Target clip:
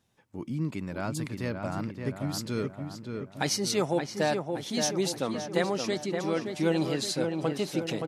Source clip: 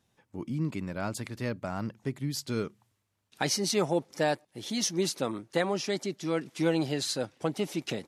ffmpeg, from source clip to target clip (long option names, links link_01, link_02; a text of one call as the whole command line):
ffmpeg -i in.wav -filter_complex "[0:a]asplit=2[link_01][link_02];[link_02]adelay=572,lowpass=frequency=2300:poles=1,volume=-5dB,asplit=2[link_03][link_04];[link_04]adelay=572,lowpass=frequency=2300:poles=1,volume=0.55,asplit=2[link_05][link_06];[link_06]adelay=572,lowpass=frequency=2300:poles=1,volume=0.55,asplit=2[link_07][link_08];[link_08]adelay=572,lowpass=frequency=2300:poles=1,volume=0.55,asplit=2[link_09][link_10];[link_10]adelay=572,lowpass=frequency=2300:poles=1,volume=0.55,asplit=2[link_11][link_12];[link_12]adelay=572,lowpass=frequency=2300:poles=1,volume=0.55,asplit=2[link_13][link_14];[link_14]adelay=572,lowpass=frequency=2300:poles=1,volume=0.55[link_15];[link_01][link_03][link_05][link_07][link_09][link_11][link_13][link_15]amix=inputs=8:normalize=0" out.wav